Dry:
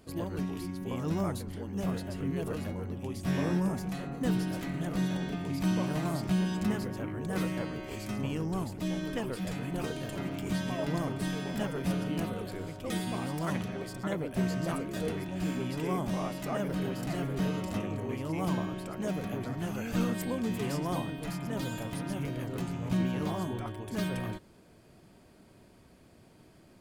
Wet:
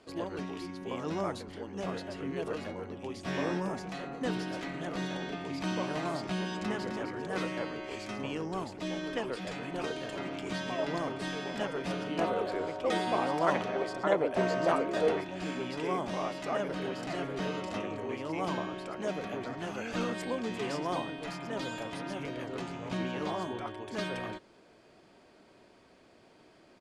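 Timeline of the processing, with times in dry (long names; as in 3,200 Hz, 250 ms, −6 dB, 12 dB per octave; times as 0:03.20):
0:06.53–0:07.02: delay throw 260 ms, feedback 20%, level −7 dB
0:12.18–0:15.21: parametric band 700 Hz +8.5 dB 2.2 octaves
whole clip: low-pass filter 11,000 Hz 24 dB per octave; three-way crossover with the lows and the highs turned down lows −14 dB, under 290 Hz, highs −15 dB, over 6,600 Hz; level +2.5 dB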